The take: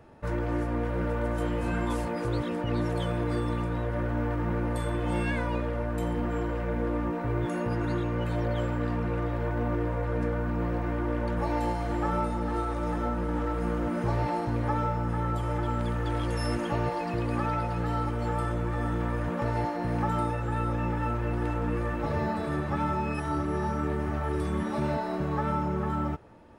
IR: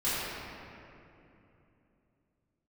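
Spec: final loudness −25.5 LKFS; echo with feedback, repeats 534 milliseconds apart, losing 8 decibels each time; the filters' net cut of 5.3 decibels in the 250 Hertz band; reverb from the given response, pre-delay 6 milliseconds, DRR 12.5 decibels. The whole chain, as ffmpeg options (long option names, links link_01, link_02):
-filter_complex "[0:a]equalizer=frequency=250:width_type=o:gain=-7.5,aecho=1:1:534|1068|1602|2136|2670:0.398|0.159|0.0637|0.0255|0.0102,asplit=2[link_01][link_02];[1:a]atrim=start_sample=2205,adelay=6[link_03];[link_02][link_03]afir=irnorm=-1:irlink=0,volume=-23.5dB[link_04];[link_01][link_04]amix=inputs=2:normalize=0,volume=5.5dB"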